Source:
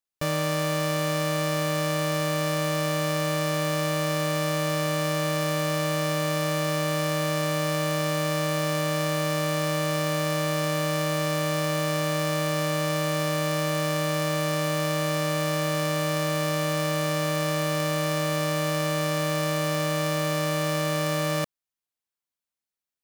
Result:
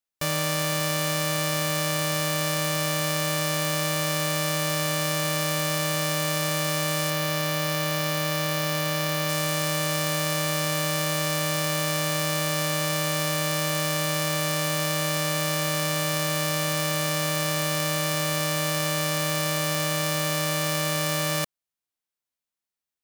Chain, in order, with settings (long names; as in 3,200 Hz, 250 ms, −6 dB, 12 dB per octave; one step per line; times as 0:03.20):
spectral envelope flattened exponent 0.6
0:07.10–0:09.29: parametric band 8,300 Hz −6 dB 0.72 octaves